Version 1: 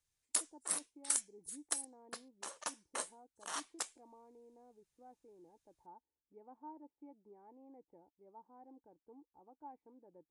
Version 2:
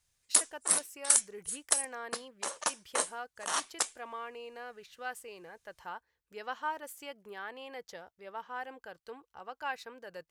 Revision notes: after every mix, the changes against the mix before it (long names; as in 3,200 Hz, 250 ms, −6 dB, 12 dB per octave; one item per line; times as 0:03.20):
speech: remove formant resonators in series u
background +9.5 dB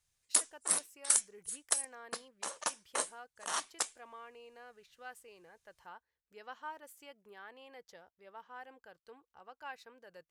speech −9.0 dB
background −3.5 dB